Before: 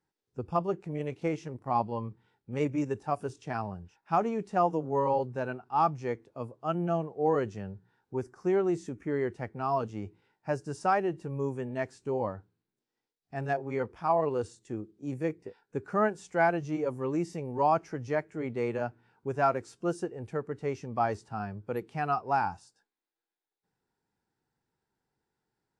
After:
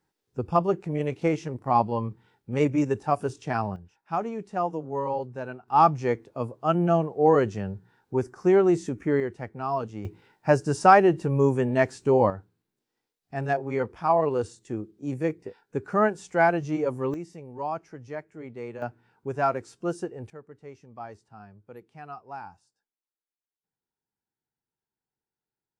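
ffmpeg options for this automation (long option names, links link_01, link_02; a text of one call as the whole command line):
ffmpeg -i in.wav -af "asetnsamples=nb_out_samples=441:pad=0,asendcmd='3.76 volume volume -1.5dB;5.68 volume volume 7.5dB;9.2 volume volume 1dB;10.05 volume volume 11dB;12.3 volume volume 4.5dB;17.14 volume volume -6dB;18.82 volume volume 1.5dB;20.3 volume volume -11.5dB',volume=6.5dB" out.wav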